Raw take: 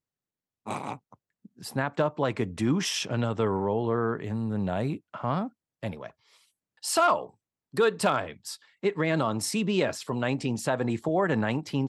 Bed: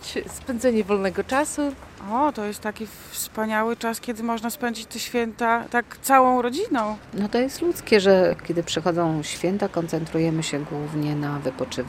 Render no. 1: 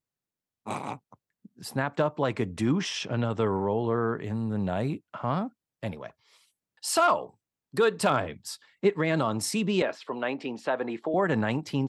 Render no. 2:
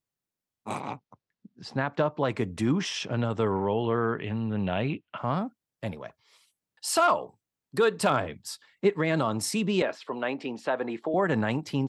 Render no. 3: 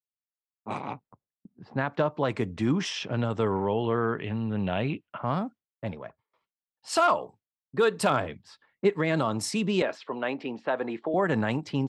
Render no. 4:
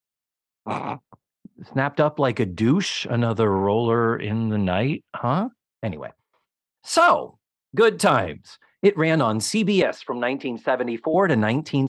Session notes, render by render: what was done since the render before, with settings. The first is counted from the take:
0:02.72–0:03.30: high-frequency loss of the air 89 metres; 0:08.10–0:08.90: low-shelf EQ 500 Hz +5.5 dB; 0:09.82–0:11.14: three-way crossover with the lows and the highs turned down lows −24 dB, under 250 Hz, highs −22 dB, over 4,100 Hz
0:00.80–0:02.29: low-pass filter 5,800 Hz 24 dB per octave; 0:03.51–0:05.18: low-pass with resonance 2,900 Hz, resonance Q 3.9
noise gate with hold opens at −49 dBFS; low-pass that shuts in the quiet parts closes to 880 Hz, open at −24 dBFS
level +6.5 dB

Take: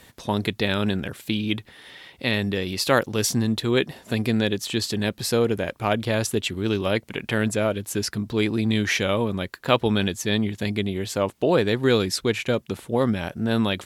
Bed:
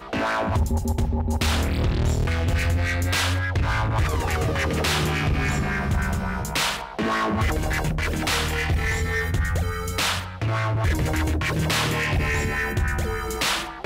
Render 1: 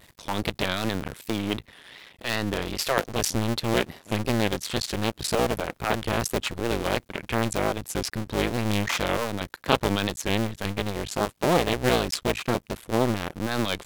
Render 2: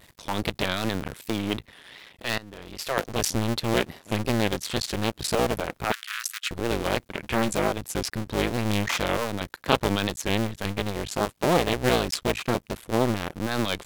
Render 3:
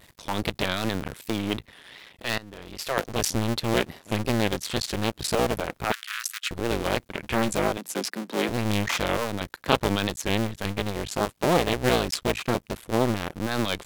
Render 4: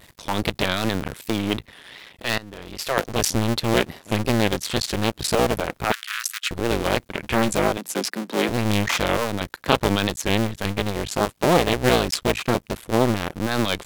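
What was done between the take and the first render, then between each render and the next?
sub-harmonics by changed cycles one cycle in 2, muted; pitch vibrato 2.6 Hz 100 cents
0:02.38–0:03.06: fade in quadratic, from −17.5 dB; 0:05.92–0:06.51: Butterworth high-pass 1,300 Hz 48 dB per octave; 0:07.22–0:07.68: double-tracking delay 14 ms −6 dB
0:07.77–0:08.49: Butterworth high-pass 170 Hz 72 dB per octave
level +4 dB; brickwall limiter −1 dBFS, peak gain reduction 2 dB

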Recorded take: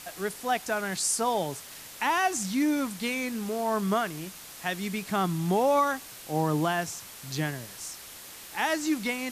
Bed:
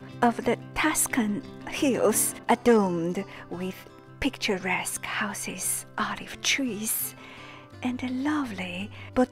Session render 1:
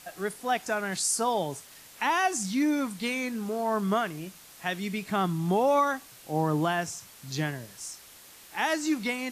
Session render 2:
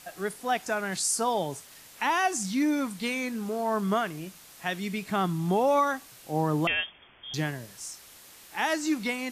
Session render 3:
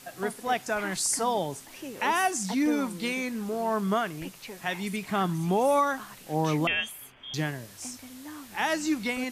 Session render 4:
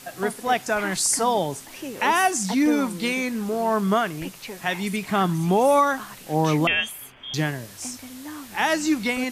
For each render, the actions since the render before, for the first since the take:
noise reduction from a noise print 6 dB
0:06.67–0:07.34: voice inversion scrambler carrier 3,400 Hz
mix in bed −16 dB
level +5.5 dB

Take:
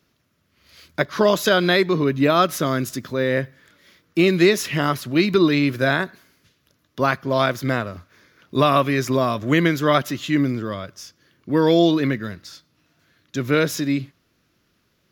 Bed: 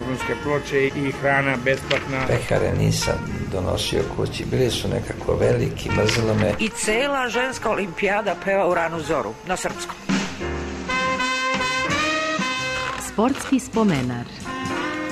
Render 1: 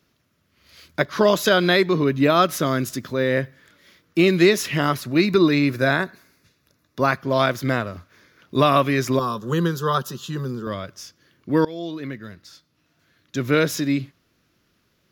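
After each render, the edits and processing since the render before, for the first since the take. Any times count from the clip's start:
0:05.02–0:07.17: notch filter 3,100 Hz, Q 5.2
0:09.19–0:10.67: phaser with its sweep stopped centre 430 Hz, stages 8
0:11.65–0:13.42: fade in, from −21.5 dB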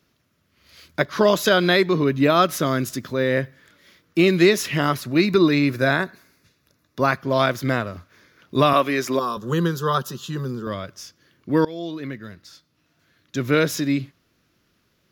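0:08.73–0:09.37: high-pass filter 250 Hz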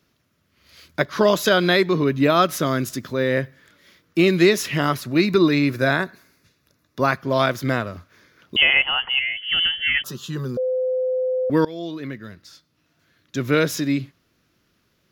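0:08.56–0:10.04: voice inversion scrambler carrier 3,200 Hz
0:10.57–0:11.50: beep over 512 Hz −19 dBFS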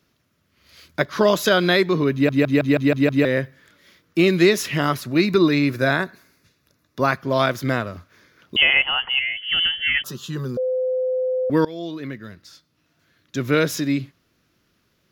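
0:02.13: stutter in place 0.16 s, 7 plays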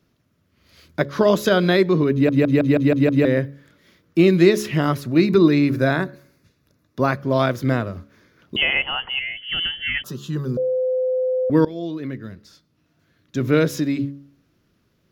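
tilt shelving filter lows +4.5 dB, about 690 Hz
hum removal 70.3 Hz, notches 8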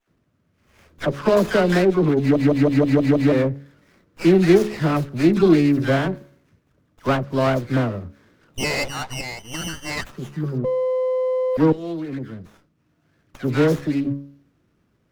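all-pass dispersion lows, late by 81 ms, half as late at 1,400 Hz
windowed peak hold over 9 samples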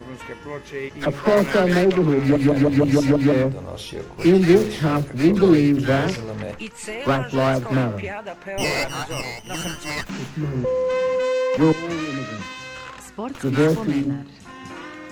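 mix in bed −10.5 dB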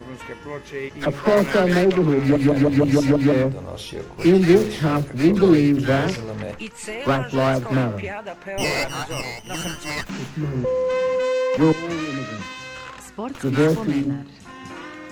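no processing that can be heard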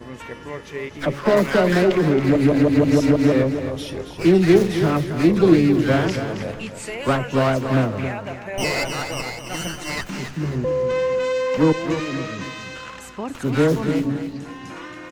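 repeating echo 272 ms, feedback 34%, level −9 dB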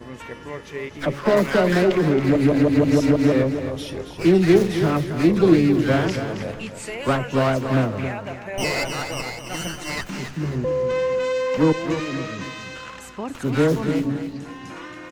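level −1 dB

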